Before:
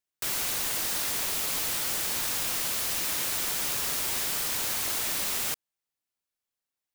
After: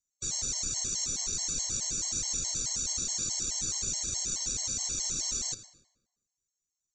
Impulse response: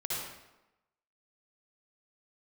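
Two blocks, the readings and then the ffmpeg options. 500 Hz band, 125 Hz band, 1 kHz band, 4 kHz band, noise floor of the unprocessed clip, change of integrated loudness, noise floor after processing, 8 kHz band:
−10.0 dB, +1.5 dB, −14.5 dB, −3.0 dB, below −85 dBFS, −3.0 dB, below −85 dBFS, +2.5 dB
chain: -filter_complex "[0:a]lowshelf=frequency=80:gain=12,bandreject=frequency=97.81:width_type=h:width=4,bandreject=frequency=195.62:width_type=h:width=4,bandreject=frequency=293.43:width_type=h:width=4,bandreject=frequency=391.24:width_type=h:width=4,bandreject=frequency=489.05:width_type=h:width=4,bandreject=frequency=586.86:width_type=h:width=4,bandreject=frequency=684.67:width_type=h:width=4,bandreject=frequency=782.48:width_type=h:width=4,bandreject=frequency=880.29:width_type=h:width=4,bandreject=frequency=978.1:width_type=h:width=4,bandreject=frequency=1075.91:width_type=h:width=4,bandreject=frequency=1173.72:width_type=h:width=4,bandreject=frequency=1271.53:width_type=h:width=4,bandreject=frequency=1369.34:width_type=h:width=4,bandreject=frequency=1467.15:width_type=h:width=4,bandreject=frequency=1564.96:width_type=h:width=4,bandreject=frequency=1662.77:width_type=h:width=4,bandreject=frequency=1760.58:width_type=h:width=4,bandreject=frequency=1858.39:width_type=h:width=4,bandreject=frequency=1956.2:width_type=h:width=4,bandreject=frequency=2054.01:width_type=h:width=4,bandreject=frequency=2151.82:width_type=h:width=4,bandreject=frequency=2249.63:width_type=h:width=4,bandreject=frequency=2347.44:width_type=h:width=4,bandreject=frequency=2445.25:width_type=h:width=4,bandreject=frequency=2543.06:width_type=h:width=4,bandreject=frequency=2640.87:width_type=h:width=4,bandreject=frequency=2738.68:width_type=h:width=4,bandreject=frequency=2836.49:width_type=h:width=4,bandreject=frequency=2934.3:width_type=h:width=4,bandreject=frequency=3032.11:width_type=h:width=4,bandreject=frequency=3129.92:width_type=h:width=4,bandreject=frequency=3227.73:width_type=h:width=4,bandreject=frequency=3325.54:width_type=h:width=4,bandreject=frequency=3423.35:width_type=h:width=4,bandreject=frequency=3521.16:width_type=h:width=4,bandreject=frequency=3618.97:width_type=h:width=4,bandreject=frequency=3716.78:width_type=h:width=4,bandreject=frequency=3814.59:width_type=h:width=4,acrossover=split=380|5700[link_01][link_02][link_03];[link_01]acontrast=74[link_04];[link_02]aeval=exprs='val(0)*sin(2*PI*1500*n/s)':channel_layout=same[link_05];[link_03]alimiter=level_in=5.5dB:limit=-24dB:level=0:latency=1,volume=-5.5dB[link_06];[link_04][link_05][link_06]amix=inputs=3:normalize=0,aexciter=amount=12.9:drive=7.3:freq=4600,asuperstop=centerf=5000:order=12:qfactor=7.2,aresample=16000,aresample=44100,asplit=2[link_07][link_08];[1:a]atrim=start_sample=2205,asetrate=39690,aresample=44100[link_09];[link_08][link_09]afir=irnorm=-1:irlink=0,volume=-17.5dB[link_10];[link_07][link_10]amix=inputs=2:normalize=0,afftfilt=real='re*gt(sin(2*PI*4.7*pts/sr)*(1-2*mod(floor(b*sr/1024/560),2)),0)':imag='im*gt(sin(2*PI*4.7*pts/sr)*(1-2*mod(floor(b*sr/1024/560),2)),0)':win_size=1024:overlap=0.75,volume=-7.5dB"

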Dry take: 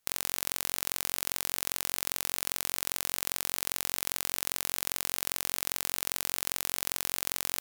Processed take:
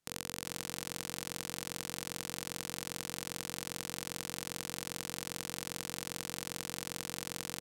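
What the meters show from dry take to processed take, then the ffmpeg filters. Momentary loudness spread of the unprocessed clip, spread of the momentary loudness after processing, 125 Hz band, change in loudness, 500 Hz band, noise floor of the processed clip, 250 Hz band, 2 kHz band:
0 LU, 0 LU, +3.5 dB, −8.5 dB, −2.0 dB, −51 dBFS, +4.0 dB, −5.5 dB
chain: -af "lowpass=11000,equalizer=frequency=190:width_type=o:width=2.5:gain=11.5,bandreject=frequency=480:width=12,aecho=1:1:384:0.316,volume=-6.5dB"

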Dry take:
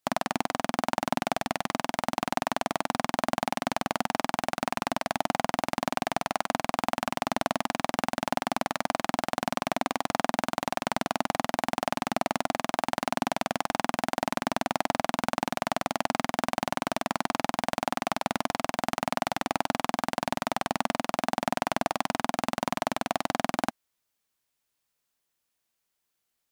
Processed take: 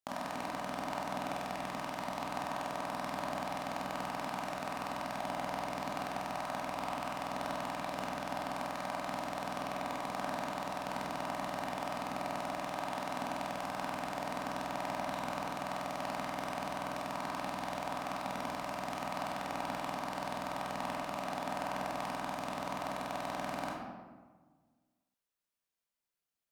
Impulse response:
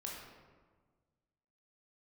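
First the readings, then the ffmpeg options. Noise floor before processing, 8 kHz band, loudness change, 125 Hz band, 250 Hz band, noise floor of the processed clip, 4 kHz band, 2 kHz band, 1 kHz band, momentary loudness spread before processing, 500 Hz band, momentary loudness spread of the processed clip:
−81 dBFS, −11.0 dB, −8.5 dB, −7.5 dB, −9.5 dB, below −85 dBFS, −10.0 dB, −9.0 dB, −8.0 dB, 1 LU, −8.0 dB, 1 LU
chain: -filter_complex "[1:a]atrim=start_sample=2205[link_01];[0:a][link_01]afir=irnorm=-1:irlink=0,volume=-7.5dB"

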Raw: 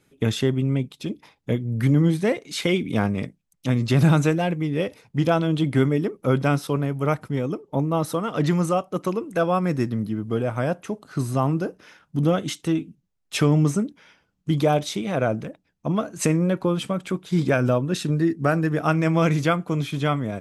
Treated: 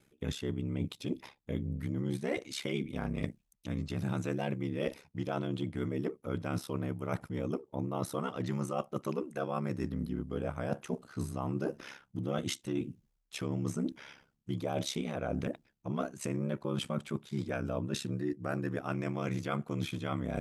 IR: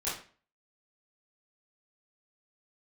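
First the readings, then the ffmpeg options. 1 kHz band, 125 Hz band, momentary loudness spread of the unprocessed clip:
−13.5 dB, −14.0 dB, 8 LU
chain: -af "areverse,acompressor=threshold=-33dB:ratio=12,areverse,aeval=exprs='val(0)*sin(2*PI*34*n/s)':channel_layout=same,volume=4.5dB"

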